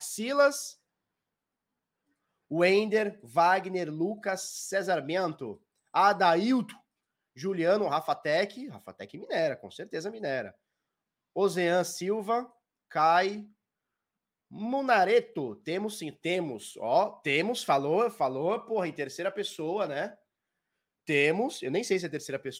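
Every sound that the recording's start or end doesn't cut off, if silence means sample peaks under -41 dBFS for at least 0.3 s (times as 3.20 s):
2.51–5.53 s
5.94–6.72 s
7.38–10.49 s
11.36–12.46 s
12.91–13.43 s
14.53–20.11 s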